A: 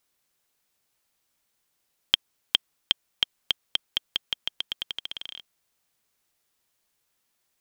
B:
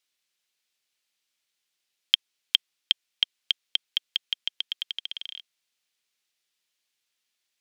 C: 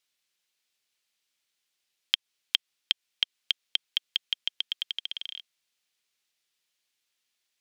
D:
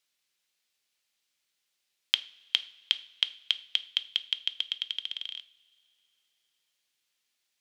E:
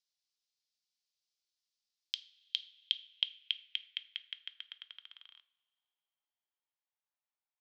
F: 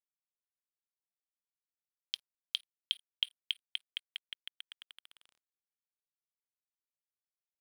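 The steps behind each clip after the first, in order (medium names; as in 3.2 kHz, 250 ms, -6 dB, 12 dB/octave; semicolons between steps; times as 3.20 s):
frequency weighting D; trim -10.5 dB
compression, threshold -20 dBFS, peak gain reduction 7 dB
two-slope reverb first 0.43 s, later 3.3 s, from -21 dB, DRR 12.5 dB
band-pass sweep 5 kHz -> 870 Hz, 2.13–6.04 s; trim -5 dB
crossover distortion -47 dBFS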